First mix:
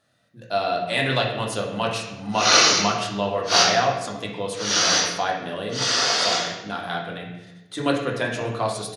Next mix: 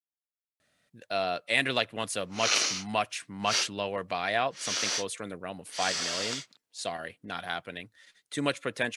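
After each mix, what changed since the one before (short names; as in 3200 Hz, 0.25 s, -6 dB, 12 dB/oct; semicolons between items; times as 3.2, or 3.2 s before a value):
speech: entry +0.60 s; reverb: off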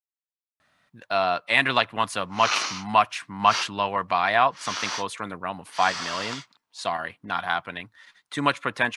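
speech +4.5 dB; master: add ten-band EQ 500 Hz -7 dB, 1000 Hz +12 dB, 8000 Hz -5 dB, 16000 Hz -6 dB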